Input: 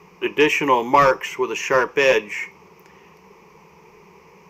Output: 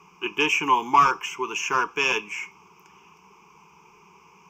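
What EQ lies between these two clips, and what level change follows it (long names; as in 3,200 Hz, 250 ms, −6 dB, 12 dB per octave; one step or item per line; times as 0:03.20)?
low-shelf EQ 220 Hz −10.5 dB
phaser with its sweep stopped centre 2,800 Hz, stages 8
0.0 dB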